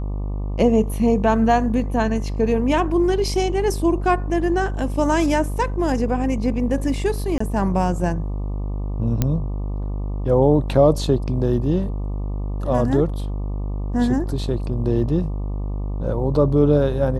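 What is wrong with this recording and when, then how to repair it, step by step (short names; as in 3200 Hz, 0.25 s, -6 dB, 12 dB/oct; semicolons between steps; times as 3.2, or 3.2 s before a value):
buzz 50 Hz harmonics 24 -25 dBFS
7.38–7.4 gap 24 ms
9.22 pop -6 dBFS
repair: de-click; de-hum 50 Hz, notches 24; interpolate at 7.38, 24 ms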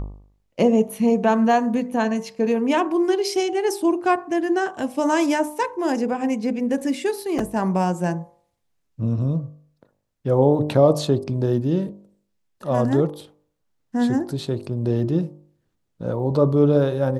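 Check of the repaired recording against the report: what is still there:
none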